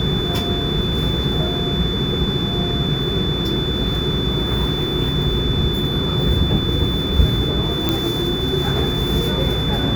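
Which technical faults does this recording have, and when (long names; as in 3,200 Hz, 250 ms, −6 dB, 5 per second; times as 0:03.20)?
whistle 3,500 Hz −24 dBFS
0:07.89: click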